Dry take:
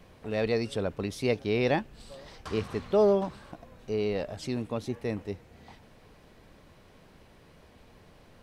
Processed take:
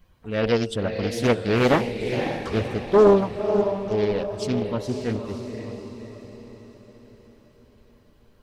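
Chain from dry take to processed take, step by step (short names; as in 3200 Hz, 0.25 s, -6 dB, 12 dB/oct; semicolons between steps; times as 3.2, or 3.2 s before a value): per-bin expansion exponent 1.5; de-hum 90.72 Hz, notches 12; on a send: diffused feedback echo 0.543 s, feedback 49%, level -6.5 dB; on the sum: Doppler distortion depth 0.65 ms; gain +9 dB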